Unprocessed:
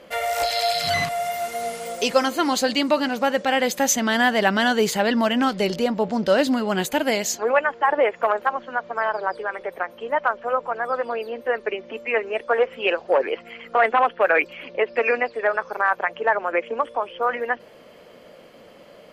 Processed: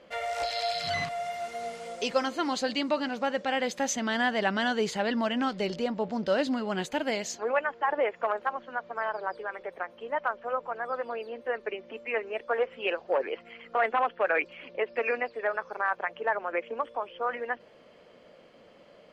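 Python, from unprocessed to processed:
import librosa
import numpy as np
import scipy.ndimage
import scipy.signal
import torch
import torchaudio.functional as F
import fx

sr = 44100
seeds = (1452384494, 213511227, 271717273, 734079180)

y = scipy.signal.sosfilt(scipy.signal.butter(2, 6300.0, 'lowpass', fs=sr, output='sos'), x)
y = F.gain(torch.from_numpy(y), -8.0).numpy()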